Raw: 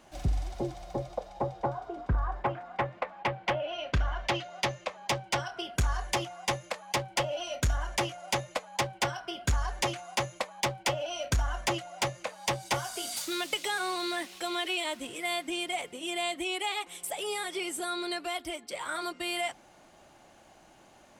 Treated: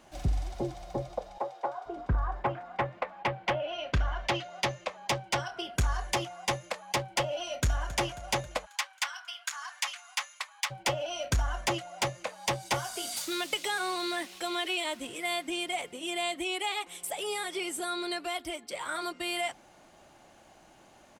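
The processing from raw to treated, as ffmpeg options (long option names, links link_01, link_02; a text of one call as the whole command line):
ffmpeg -i in.wav -filter_complex "[0:a]asettb=1/sr,asplit=3[link_01][link_02][link_03];[link_01]atrim=end=1.384[link_04];[link_02]atrim=start=1.38:end=1.86,asetpts=PTS-STARTPTS,afade=type=in:duration=0.004:curve=qsin,afade=type=out:start_time=0.476:duration=0.004:curve=qsin,highpass=540[link_05];[link_03]atrim=start=1.856[link_06];[link_04][link_05]acrossfade=duration=0.004:curve1=hsin:curve2=qsin[link_07];[link_07][link_06]acrossfade=duration=0.004:curve1=qsin:curve2=hsin,asplit=2[link_08][link_09];[link_09]afade=type=in:start_time=7.43:duration=0.01,afade=type=out:start_time=7.9:duration=0.01,aecho=0:1:270|540|810|1080|1350|1620|1890|2160:0.158489|0.110943|0.0776598|0.0543618|0.0380533|0.0266373|0.0186461|0.0130523[link_10];[link_08][link_10]amix=inputs=2:normalize=0,asplit=3[link_11][link_12][link_13];[link_11]afade=type=out:start_time=8.65:duration=0.02[link_14];[link_12]highpass=frequency=1100:width=0.5412,highpass=frequency=1100:width=1.3066,afade=type=in:start_time=8.65:duration=0.02,afade=type=out:start_time=10.7:duration=0.02[link_15];[link_13]afade=type=in:start_time=10.7:duration=0.02[link_16];[link_14][link_15][link_16]amix=inputs=3:normalize=0" out.wav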